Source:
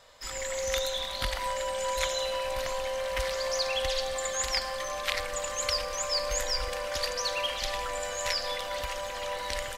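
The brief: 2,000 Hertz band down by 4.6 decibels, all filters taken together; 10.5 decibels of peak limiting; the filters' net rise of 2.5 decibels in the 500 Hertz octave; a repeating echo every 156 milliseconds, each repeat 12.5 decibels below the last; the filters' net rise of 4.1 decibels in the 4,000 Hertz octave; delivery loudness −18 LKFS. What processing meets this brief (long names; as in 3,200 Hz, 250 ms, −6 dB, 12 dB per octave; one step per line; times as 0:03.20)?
parametric band 500 Hz +3 dB
parametric band 2,000 Hz −8 dB
parametric band 4,000 Hz +7 dB
brickwall limiter −19.5 dBFS
repeating echo 156 ms, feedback 24%, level −12.5 dB
level +11.5 dB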